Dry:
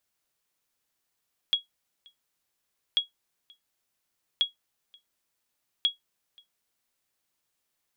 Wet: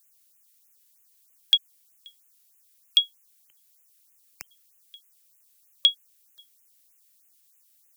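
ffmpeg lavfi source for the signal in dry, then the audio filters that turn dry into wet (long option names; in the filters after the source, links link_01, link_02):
-f lavfi -i "aevalsrc='0.178*(sin(2*PI*3320*mod(t,1.44))*exp(-6.91*mod(t,1.44)/0.14)+0.0335*sin(2*PI*3320*max(mod(t,1.44)-0.53,0))*exp(-6.91*max(mod(t,1.44)-0.53,0)/0.14))':duration=5.76:sample_rate=44100"
-filter_complex "[0:a]acrossover=split=130|1100[link_01][link_02][link_03];[link_03]crystalizer=i=4.5:c=0[link_04];[link_01][link_02][link_04]amix=inputs=3:normalize=0,afftfilt=real='re*(1-between(b*sr/1024,800*pow(4500/800,0.5+0.5*sin(2*PI*3.2*pts/sr))/1.41,800*pow(4500/800,0.5+0.5*sin(2*PI*3.2*pts/sr))*1.41))':imag='im*(1-between(b*sr/1024,800*pow(4500/800,0.5+0.5*sin(2*PI*3.2*pts/sr))/1.41,800*pow(4500/800,0.5+0.5*sin(2*PI*3.2*pts/sr))*1.41))':win_size=1024:overlap=0.75"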